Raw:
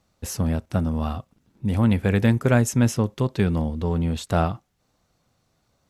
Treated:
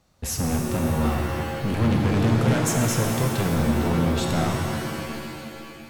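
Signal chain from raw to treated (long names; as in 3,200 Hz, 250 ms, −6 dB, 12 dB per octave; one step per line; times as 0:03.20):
brickwall limiter −13 dBFS, peak gain reduction 6 dB
hard clipping −25 dBFS, distortion −7 dB
reverb with rising layers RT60 2.5 s, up +7 semitones, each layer −2 dB, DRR 1.5 dB
level +3 dB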